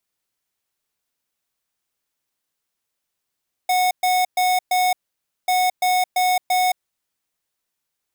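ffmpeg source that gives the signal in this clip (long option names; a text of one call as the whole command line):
ffmpeg -f lavfi -i "aevalsrc='0.126*(2*lt(mod(733*t,1),0.5)-1)*clip(min(mod(mod(t,1.79),0.34),0.22-mod(mod(t,1.79),0.34))/0.005,0,1)*lt(mod(t,1.79),1.36)':duration=3.58:sample_rate=44100" out.wav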